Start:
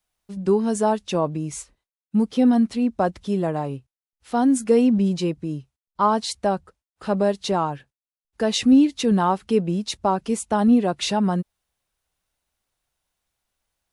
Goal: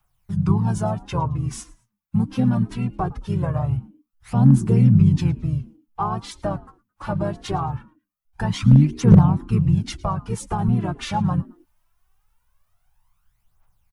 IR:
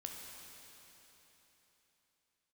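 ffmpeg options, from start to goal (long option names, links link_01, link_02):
-filter_complex "[0:a]asplit=4[link_01][link_02][link_03][link_04];[link_02]asetrate=22050,aresample=44100,atempo=2,volume=-13dB[link_05];[link_03]asetrate=33038,aresample=44100,atempo=1.33484,volume=-11dB[link_06];[link_04]asetrate=37084,aresample=44100,atempo=1.18921,volume=-5dB[link_07];[link_01][link_05][link_06][link_07]amix=inputs=4:normalize=0,equalizer=frequency=125:width_type=o:width=1:gain=9,equalizer=frequency=250:width_type=o:width=1:gain=-11,equalizer=frequency=500:width_type=o:width=1:gain=-11,equalizer=frequency=1000:width_type=o:width=1:gain=6,equalizer=frequency=2000:width_type=o:width=1:gain=-4,equalizer=frequency=4000:width_type=o:width=1:gain=-8,equalizer=frequency=8000:width_type=o:width=1:gain=-8,acrossover=split=250[link_08][link_09];[link_09]acompressor=threshold=-41dB:ratio=2[link_10];[link_08][link_10]amix=inputs=2:normalize=0,aphaser=in_gain=1:out_gain=1:delay=3.9:decay=0.6:speed=0.22:type=triangular,asoftclip=type=hard:threshold=-8dB,asubboost=boost=2:cutoff=54,asplit=2[link_11][link_12];[link_12]asplit=2[link_13][link_14];[link_13]adelay=109,afreqshift=87,volume=-23dB[link_15];[link_14]adelay=218,afreqshift=174,volume=-33.2dB[link_16];[link_15][link_16]amix=inputs=2:normalize=0[link_17];[link_11][link_17]amix=inputs=2:normalize=0,volume=5.5dB"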